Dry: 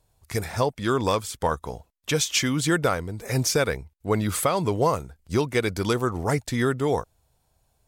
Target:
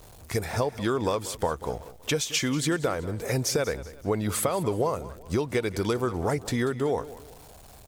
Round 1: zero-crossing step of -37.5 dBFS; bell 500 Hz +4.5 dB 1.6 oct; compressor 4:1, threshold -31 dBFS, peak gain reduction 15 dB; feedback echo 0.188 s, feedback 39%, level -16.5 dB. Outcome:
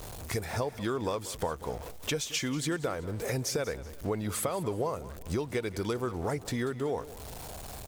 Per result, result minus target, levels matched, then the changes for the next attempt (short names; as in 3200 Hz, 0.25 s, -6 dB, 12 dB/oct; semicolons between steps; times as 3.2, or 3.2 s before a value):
compressor: peak gain reduction +6 dB; zero-crossing step: distortion +7 dB
change: compressor 4:1, threshold -23.5 dBFS, peak gain reduction 9 dB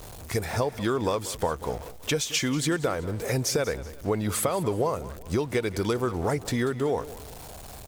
zero-crossing step: distortion +7 dB
change: zero-crossing step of -45 dBFS